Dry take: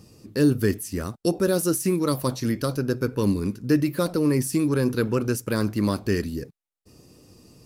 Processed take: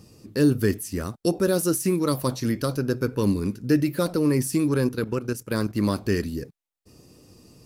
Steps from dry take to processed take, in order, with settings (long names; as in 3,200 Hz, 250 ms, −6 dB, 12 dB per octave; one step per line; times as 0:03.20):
0:03.54–0:04.02: notch filter 1,100 Hz, Q 6.1
0:04.87–0:05.75: output level in coarse steps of 12 dB